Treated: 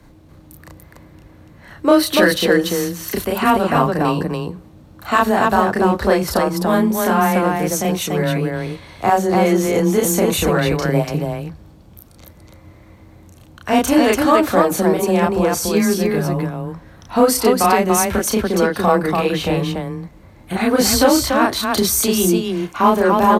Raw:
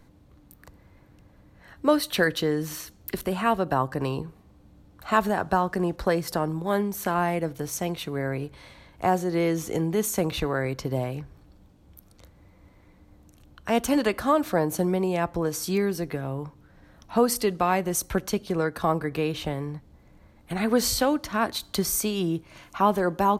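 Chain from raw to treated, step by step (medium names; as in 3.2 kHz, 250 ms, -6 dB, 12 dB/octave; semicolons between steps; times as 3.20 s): frequency shift +17 Hz; in parallel at -8 dB: saturation -23 dBFS, distortion -9 dB; on the sum: loudspeakers at several distances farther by 11 m -1 dB, 99 m -2 dB; trim +4 dB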